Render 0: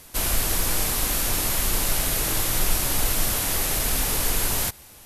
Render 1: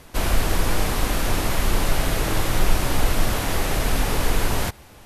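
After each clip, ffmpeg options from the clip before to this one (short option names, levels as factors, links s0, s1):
-af "lowpass=f=1800:p=1,volume=2"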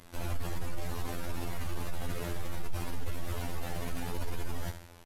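-af "aecho=1:1:79|158|237|316:0.188|0.0735|0.0287|0.0112,afftfilt=real='hypot(re,im)*cos(PI*b)':imag='0':win_size=2048:overlap=0.75,aeval=exprs='(tanh(5.01*val(0)+0.55)-tanh(0.55))/5.01':c=same,volume=0.841"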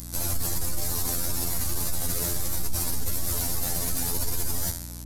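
-af "aexciter=amount=7.7:drive=2.9:freq=4200,aeval=exprs='val(0)+0.00891*(sin(2*PI*60*n/s)+sin(2*PI*2*60*n/s)/2+sin(2*PI*3*60*n/s)/3+sin(2*PI*4*60*n/s)/4+sin(2*PI*5*60*n/s)/5)':c=same,volume=1.41"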